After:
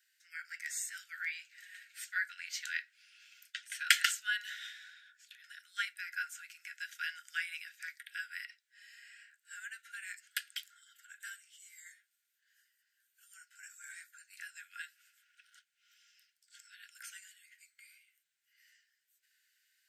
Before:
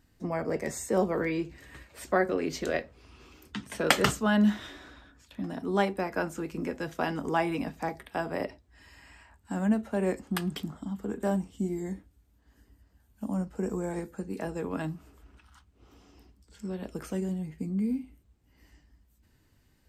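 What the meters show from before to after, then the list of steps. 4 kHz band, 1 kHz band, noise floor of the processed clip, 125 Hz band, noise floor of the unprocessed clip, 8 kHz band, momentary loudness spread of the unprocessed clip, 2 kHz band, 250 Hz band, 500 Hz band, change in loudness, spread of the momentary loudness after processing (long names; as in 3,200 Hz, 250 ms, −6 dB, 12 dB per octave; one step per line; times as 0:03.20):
−0.5 dB, −15.5 dB, −82 dBFS, below −40 dB, −66 dBFS, 0.0 dB, 13 LU, −0.5 dB, below −40 dB, below −40 dB, −7.5 dB, 20 LU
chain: Chebyshev high-pass filter 1,400 Hz, order 10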